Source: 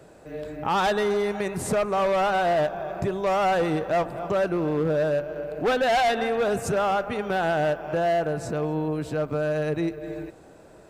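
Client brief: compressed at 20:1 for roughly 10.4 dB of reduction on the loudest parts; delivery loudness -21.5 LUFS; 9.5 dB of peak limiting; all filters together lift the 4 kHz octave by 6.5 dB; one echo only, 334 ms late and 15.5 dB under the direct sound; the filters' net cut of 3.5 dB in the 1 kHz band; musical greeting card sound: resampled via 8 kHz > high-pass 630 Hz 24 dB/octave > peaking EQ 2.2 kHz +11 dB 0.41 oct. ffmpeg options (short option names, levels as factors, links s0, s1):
-af "equalizer=f=1000:t=o:g=-5,equalizer=f=4000:t=o:g=7,acompressor=threshold=0.0282:ratio=20,alimiter=level_in=2.11:limit=0.0631:level=0:latency=1,volume=0.473,aecho=1:1:334:0.168,aresample=8000,aresample=44100,highpass=f=630:w=0.5412,highpass=f=630:w=1.3066,equalizer=f=2200:t=o:w=0.41:g=11,volume=8.41"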